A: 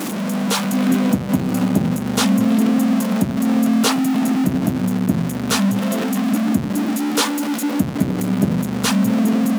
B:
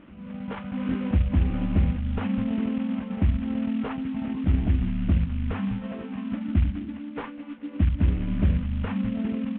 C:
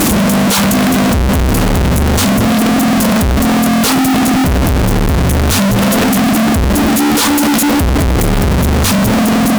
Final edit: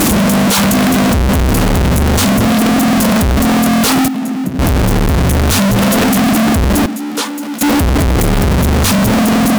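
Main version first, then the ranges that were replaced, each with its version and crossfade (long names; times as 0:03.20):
C
0:04.08–0:04.59: punch in from A
0:06.86–0:07.61: punch in from A
not used: B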